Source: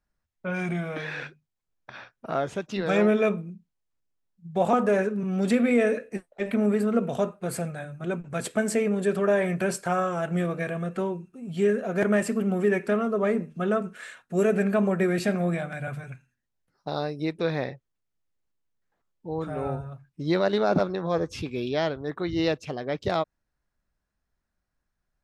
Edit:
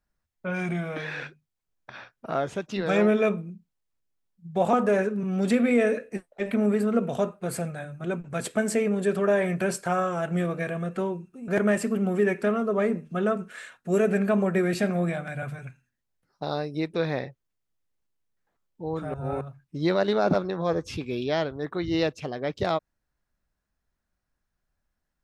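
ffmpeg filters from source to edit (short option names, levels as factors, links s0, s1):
-filter_complex "[0:a]asplit=4[s0][s1][s2][s3];[s0]atrim=end=11.482[s4];[s1]atrim=start=11.928:end=19.592[s5];[s2]atrim=start=19.588:end=19.862,asetpts=PTS-STARTPTS,areverse[s6];[s3]atrim=start=19.858[s7];[s4][s5]acrossfade=d=0.004:c1=hsin:c2=hsin[s8];[s8][s6]acrossfade=d=0.004:c1=hsin:c2=hsin[s9];[s9][s7]acrossfade=d=0.004:c1=hsin:c2=hsin"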